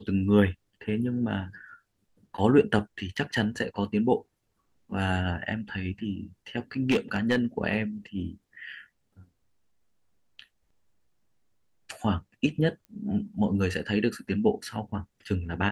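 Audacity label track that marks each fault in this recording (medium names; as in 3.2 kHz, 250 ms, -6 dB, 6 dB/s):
3.170000	3.170000	dropout 4.3 ms
6.910000	7.380000	clipped -18.5 dBFS
12.850000	12.850000	pop -34 dBFS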